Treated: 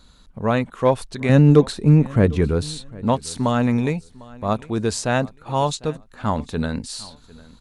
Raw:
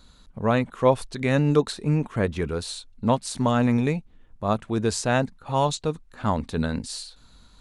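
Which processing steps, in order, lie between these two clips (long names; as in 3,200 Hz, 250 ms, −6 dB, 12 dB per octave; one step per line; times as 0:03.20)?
0:01.29–0:02.90: low-shelf EQ 450 Hz +9 dB
in parallel at −8.5 dB: asymmetric clip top −13.5 dBFS, bottom −6.5 dBFS
on the sum: repeating echo 751 ms, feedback 23%, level −22 dB
level −1 dB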